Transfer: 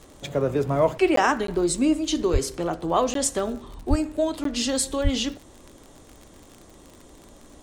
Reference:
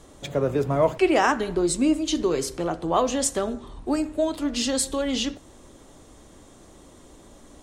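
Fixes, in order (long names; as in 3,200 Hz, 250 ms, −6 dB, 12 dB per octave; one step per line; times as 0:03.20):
click removal
0:02.32–0:02.44: high-pass filter 140 Hz 24 dB per octave
0:03.89–0:04.01: high-pass filter 140 Hz 24 dB per octave
0:05.03–0:05.15: high-pass filter 140 Hz 24 dB per octave
repair the gap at 0:01.16/0:01.47/0:03.14/0:04.44, 13 ms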